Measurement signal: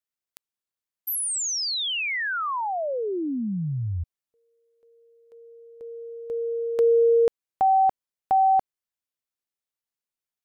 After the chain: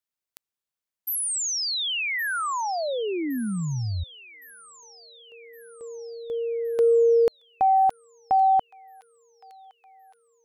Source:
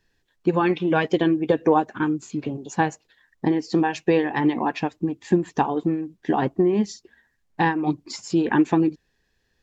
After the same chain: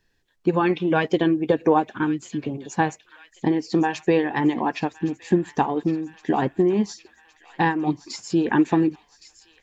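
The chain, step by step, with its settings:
delay with a high-pass on its return 1,115 ms, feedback 59%, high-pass 1,900 Hz, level −14 dB

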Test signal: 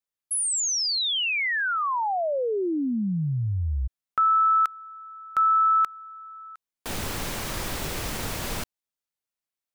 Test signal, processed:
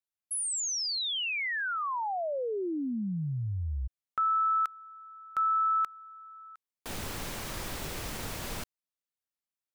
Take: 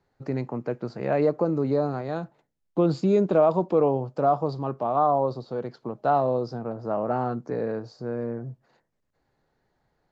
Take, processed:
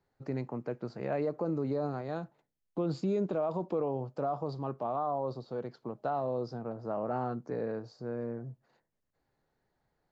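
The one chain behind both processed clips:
brickwall limiter −17 dBFS
level −6.5 dB

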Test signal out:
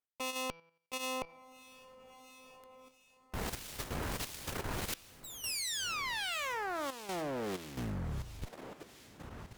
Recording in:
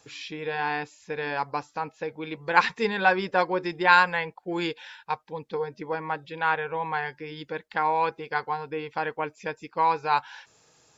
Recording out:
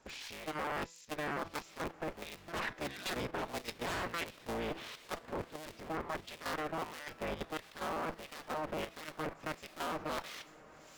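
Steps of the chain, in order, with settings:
sub-harmonics by changed cycles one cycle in 3, inverted
wave folding −17.5 dBFS
harmonic generator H 5 −28 dB, 7 −43 dB, 8 −22 dB, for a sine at −17.5 dBFS
reversed playback
downward compressor 12 to 1, threshold −32 dBFS
reversed playback
hum removal 166.1 Hz, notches 36
on a send: feedback delay with all-pass diffusion 1,386 ms, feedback 52%, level −15 dB
on the sum: two-band tremolo in antiphase 1.5 Hz, depth 70%, crossover 2,200 Hz
output level in coarse steps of 10 dB
level +3 dB

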